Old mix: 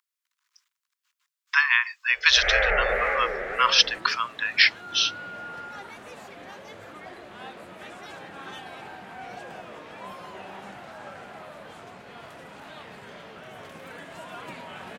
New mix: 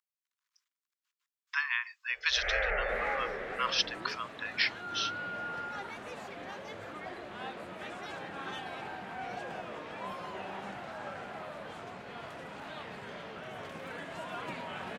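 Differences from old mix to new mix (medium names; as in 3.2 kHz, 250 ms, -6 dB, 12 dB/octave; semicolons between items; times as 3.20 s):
speech -11.5 dB; first sound -8.5 dB; second sound: add treble shelf 8.3 kHz -9.5 dB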